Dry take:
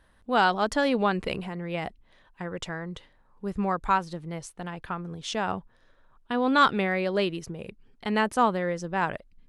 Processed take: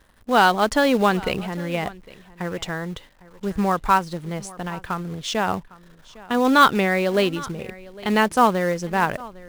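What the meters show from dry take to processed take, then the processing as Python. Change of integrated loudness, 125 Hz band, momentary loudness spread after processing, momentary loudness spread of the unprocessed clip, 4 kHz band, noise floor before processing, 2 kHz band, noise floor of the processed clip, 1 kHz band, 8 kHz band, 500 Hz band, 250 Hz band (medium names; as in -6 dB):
+6.0 dB, +6.0 dB, 15 LU, 15 LU, +6.0 dB, -62 dBFS, +6.0 dB, -51 dBFS, +6.0 dB, +8.5 dB, +6.0 dB, +6.0 dB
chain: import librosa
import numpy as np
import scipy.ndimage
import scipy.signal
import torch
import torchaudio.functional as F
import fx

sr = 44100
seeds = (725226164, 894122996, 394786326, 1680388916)

p1 = fx.quant_companded(x, sr, bits=4)
p2 = x + F.gain(torch.from_numpy(p1), -5.0).numpy()
p3 = p2 + 10.0 ** (-20.5 / 20.0) * np.pad(p2, (int(806 * sr / 1000.0), 0))[:len(p2)]
y = F.gain(torch.from_numpy(p3), 2.0).numpy()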